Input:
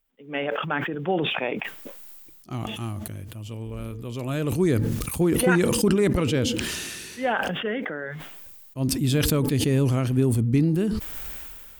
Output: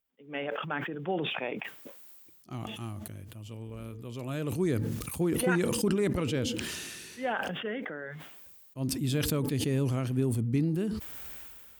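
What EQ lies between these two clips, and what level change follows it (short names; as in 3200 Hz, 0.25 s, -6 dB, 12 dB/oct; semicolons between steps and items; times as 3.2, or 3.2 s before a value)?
HPF 66 Hz; -7.0 dB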